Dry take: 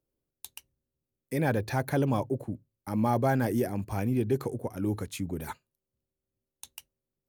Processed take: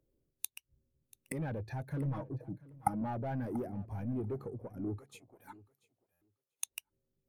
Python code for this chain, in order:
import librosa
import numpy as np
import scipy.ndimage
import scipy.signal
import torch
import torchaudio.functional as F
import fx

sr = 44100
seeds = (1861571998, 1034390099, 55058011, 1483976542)

p1 = fx.fold_sine(x, sr, drive_db=8, ceiling_db=-14.0)
p2 = x + F.gain(torch.from_numpy(p1), -5.0).numpy()
p3 = fx.comb(p2, sr, ms=6.3, depth=0.82, at=(1.92, 3.02))
p4 = 10.0 ** (-19.5 / 20.0) * np.tanh(p3 / 10.0 ** (-19.5 / 20.0))
p5 = fx.gate_flip(p4, sr, shuts_db=-26.0, range_db=-25)
p6 = fx.highpass(p5, sr, hz=720.0, slope=12, at=(4.98, 6.66))
p7 = p6 + fx.echo_feedback(p6, sr, ms=687, feedback_pct=24, wet_db=-14, dry=0)
p8 = fx.buffer_glitch(p7, sr, at_s=(6.12,), block=512, repeats=7)
p9 = fx.spectral_expand(p8, sr, expansion=1.5)
y = F.gain(torch.from_numpy(p9), 7.0).numpy()